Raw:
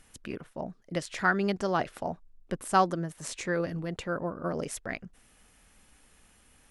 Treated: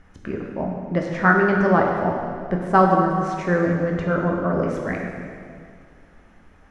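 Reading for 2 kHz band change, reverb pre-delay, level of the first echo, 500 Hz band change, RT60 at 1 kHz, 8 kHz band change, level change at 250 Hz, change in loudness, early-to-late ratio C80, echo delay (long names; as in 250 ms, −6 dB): +9.5 dB, 7 ms, no echo audible, +11.0 dB, 2.1 s, can't be measured, +12.0 dB, +10.5 dB, 3.5 dB, no echo audible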